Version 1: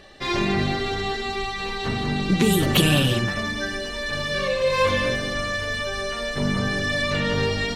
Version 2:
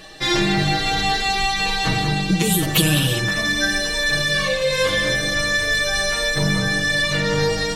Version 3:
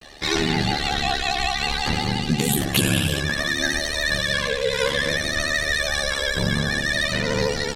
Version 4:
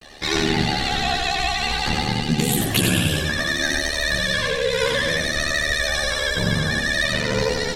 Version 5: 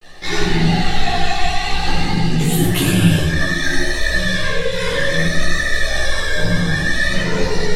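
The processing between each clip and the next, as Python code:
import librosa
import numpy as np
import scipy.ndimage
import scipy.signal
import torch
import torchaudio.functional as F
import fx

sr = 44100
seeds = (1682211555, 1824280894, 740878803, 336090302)

y1 = x + 0.87 * np.pad(x, (int(6.3 * sr / 1000.0), 0))[:len(x)]
y1 = fx.rider(y1, sr, range_db=4, speed_s=0.5)
y1 = fx.high_shelf(y1, sr, hz=4700.0, db=10.5)
y2 = fx.vibrato(y1, sr, rate_hz=13.0, depth_cents=68.0)
y2 = y2 * np.sin(2.0 * np.pi * 36.0 * np.arange(len(y2)) / sr)
y2 = fx.vibrato(y2, sr, rate_hz=0.59, depth_cents=78.0)
y3 = y2 + 10.0 ** (-5.0 / 20.0) * np.pad(y2, (int(92 * sr / 1000.0), 0))[:len(y2)]
y4 = fx.chorus_voices(y3, sr, voices=4, hz=1.2, base_ms=14, depth_ms=3.2, mix_pct=45)
y4 = fx.room_shoebox(y4, sr, seeds[0], volume_m3=210.0, walls='furnished', distance_m=4.1)
y4 = y4 * 10.0 ** (-3.5 / 20.0)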